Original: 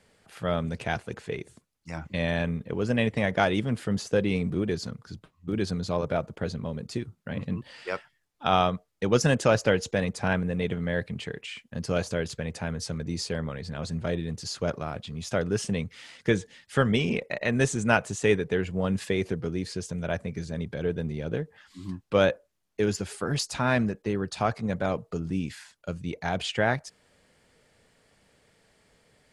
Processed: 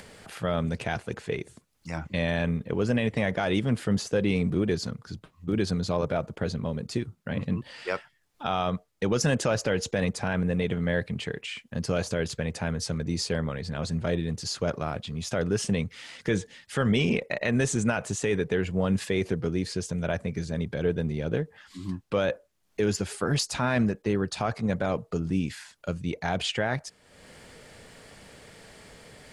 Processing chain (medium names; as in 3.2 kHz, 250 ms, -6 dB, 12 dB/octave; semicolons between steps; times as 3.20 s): peak limiter -17 dBFS, peak gain reduction 11.5 dB; upward compressor, threshold -40 dBFS; trim +2.5 dB